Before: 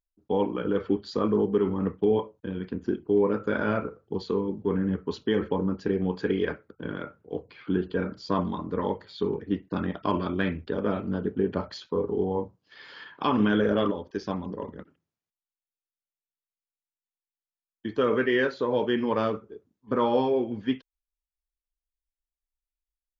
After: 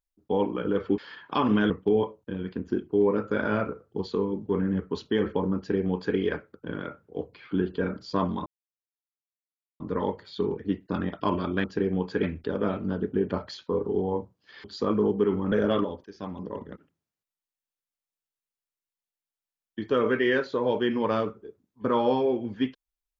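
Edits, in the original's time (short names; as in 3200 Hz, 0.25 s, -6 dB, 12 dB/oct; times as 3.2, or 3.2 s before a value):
0.98–1.86 swap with 12.87–13.59
5.73–6.32 copy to 10.46
8.62 insert silence 1.34 s
14.13–14.77 fade in equal-power, from -16.5 dB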